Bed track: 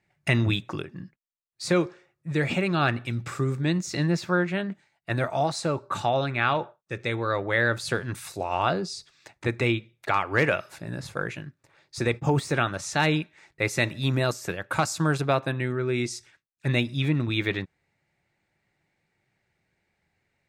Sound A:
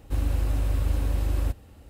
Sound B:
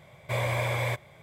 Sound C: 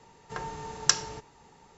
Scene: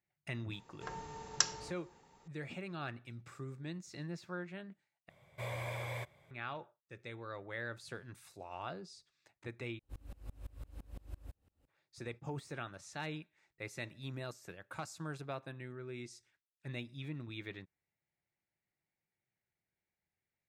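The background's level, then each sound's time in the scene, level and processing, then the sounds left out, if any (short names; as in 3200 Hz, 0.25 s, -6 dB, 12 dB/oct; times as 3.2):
bed track -19 dB
0.51 add C -8 dB
5.09 replace with B -12.5 dB
9.79 replace with A -16.5 dB + dB-ramp tremolo swelling 5.9 Hz, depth 29 dB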